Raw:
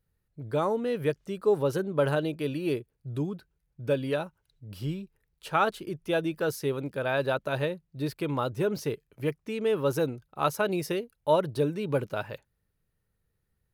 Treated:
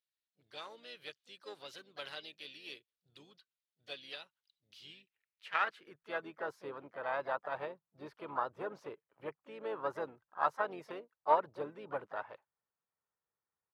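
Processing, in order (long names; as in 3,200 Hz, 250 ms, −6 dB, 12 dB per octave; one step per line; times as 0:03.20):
harmonic generator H 2 −40 dB, 3 −18 dB, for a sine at −11.5 dBFS
band-pass filter sweep 3,600 Hz → 1,000 Hz, 0:04.78–0:06.44
pitch-shifted copies added −5 semitones −15 dB, +4 semitones −10 dB
level +2 dB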